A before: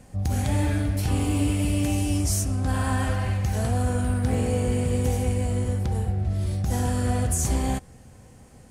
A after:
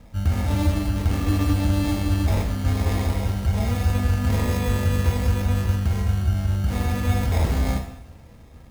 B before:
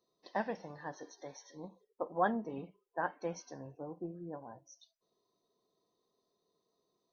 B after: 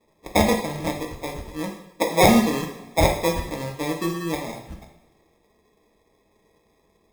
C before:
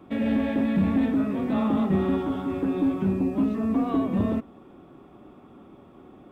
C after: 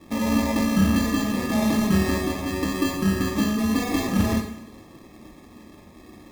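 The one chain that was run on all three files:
sample-and-hold 30×; bass shelf 68 Hz +9.5 dB; two-slope reverb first 0.66 s, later 2 s, from -19 dB, DRR 2 dB; normalise loudness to -23 LUFS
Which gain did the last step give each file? -2.5 dB, +15.0 dB, -0.5 dB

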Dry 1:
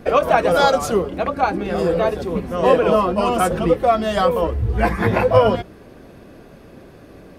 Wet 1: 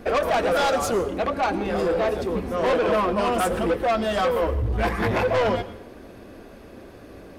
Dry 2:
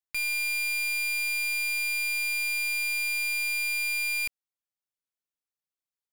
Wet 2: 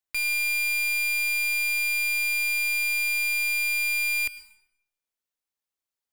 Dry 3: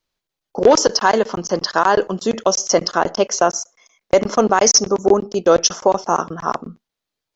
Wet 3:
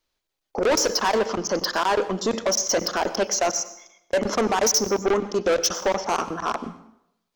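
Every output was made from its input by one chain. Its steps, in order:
saturation -17.5 dBFS; peaking EQ 150 Hz -12 dB 0.36 oct; plate-style reverb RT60 0.76 s, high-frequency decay 0.8×, pre-delay 85 ms, DRR 14.5 dB; normalise loudness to -23 LUFS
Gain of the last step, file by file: 0.0 dB, +2.5 dB, +0.5 dB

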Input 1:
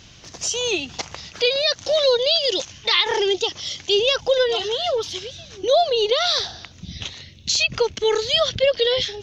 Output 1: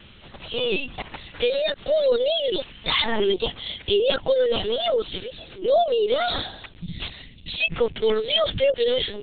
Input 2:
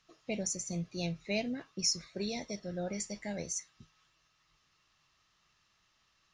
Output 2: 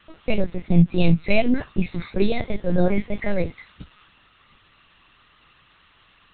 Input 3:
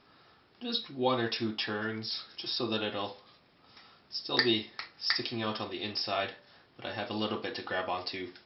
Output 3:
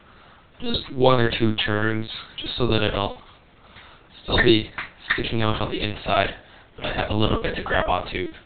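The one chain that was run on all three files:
dynamic bell 170 Hz, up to +6 dB, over -46 dBFS, Q 2.1; in parallel at -0.5 dB: peak limiter -14.5 dBFS; on the sum: LPC vocoder at 8 kHz pitch kept; normalise loudness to -23 LUFS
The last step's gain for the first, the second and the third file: -6.0 dB, +12.0 dB, +6.0 dB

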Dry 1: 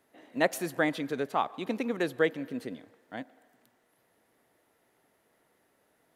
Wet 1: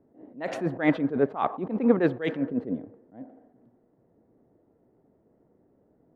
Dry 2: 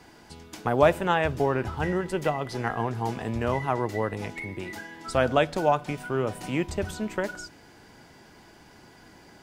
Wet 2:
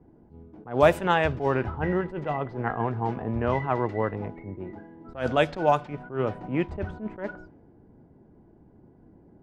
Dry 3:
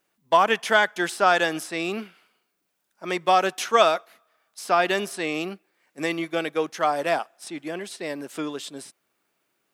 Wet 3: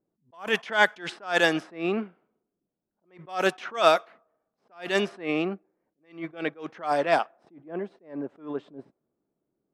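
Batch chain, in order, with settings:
level-controlled noise filter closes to 360 Hz, open at -16.5 dBFS; attacks held to a fixed rise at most 170 dB/s; normalise loudness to -27 LUFS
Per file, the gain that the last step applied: +12.5 dB, +1.5 dB, +3.0 dB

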